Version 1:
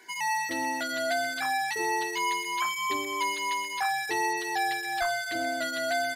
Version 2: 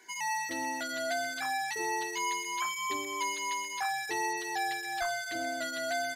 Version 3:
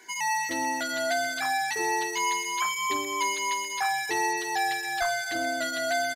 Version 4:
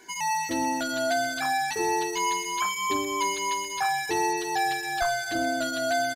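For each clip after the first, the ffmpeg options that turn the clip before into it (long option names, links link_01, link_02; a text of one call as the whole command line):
ffmpeg -i in.wav -af "equalizer=frequency=6500:width_type=o:width=0.26:gain=7,volume=-4.5dB" out.wav
ffmpeg -i in.wav -af "aecho=1:1:339:0.126,volume=5.5dB" out.wav
ffmpeg -i in.wav -af "lowshelf=frequency=370:gain=9,bandreject=frequency=2000:width=7.1" out.wav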